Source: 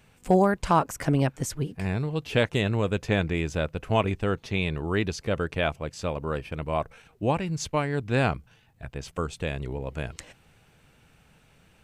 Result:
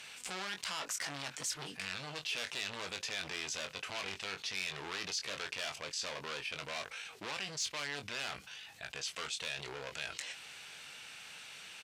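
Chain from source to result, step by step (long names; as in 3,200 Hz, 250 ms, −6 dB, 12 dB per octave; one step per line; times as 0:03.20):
brickwall limiter −16.5 dBFS, peak gain reduction 6.5 dB
hard clipping −32.5 dBFS, distortion −4 dB
resonant band-pass 4,400 Hz, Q 0.89
double-tracking delay 21 ms −9 dB
envelope flattener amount 50%
level +1.5 dB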